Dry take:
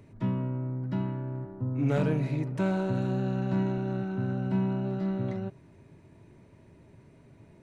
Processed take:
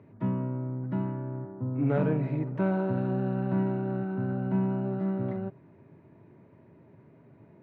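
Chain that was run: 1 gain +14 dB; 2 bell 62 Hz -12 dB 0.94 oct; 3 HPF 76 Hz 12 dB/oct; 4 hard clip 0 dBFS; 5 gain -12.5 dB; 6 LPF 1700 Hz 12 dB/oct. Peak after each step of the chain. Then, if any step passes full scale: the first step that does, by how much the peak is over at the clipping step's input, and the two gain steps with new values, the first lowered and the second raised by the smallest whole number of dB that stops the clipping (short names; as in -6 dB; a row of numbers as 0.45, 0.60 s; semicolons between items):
-0.5, -2.0, -2.0, -2.0, -14.5, -15.0 dBFS; no overload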